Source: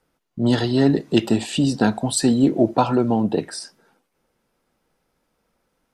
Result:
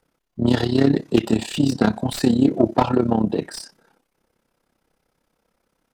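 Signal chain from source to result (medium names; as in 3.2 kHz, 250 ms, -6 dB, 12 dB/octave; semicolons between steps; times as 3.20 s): self-modulated delay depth 0.11 ms; AM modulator 33 Hz, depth 65%; slew-rate limiter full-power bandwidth 170 Hz; trim +3.5 dB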